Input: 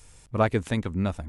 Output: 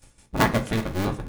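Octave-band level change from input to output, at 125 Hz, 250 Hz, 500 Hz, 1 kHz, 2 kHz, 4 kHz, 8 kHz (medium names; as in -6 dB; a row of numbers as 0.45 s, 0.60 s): +0.5 dB, +2.0 dB, -0.5 dB, +4.0 dB, +6.0 dB, +7.5 dB, +9.5 dB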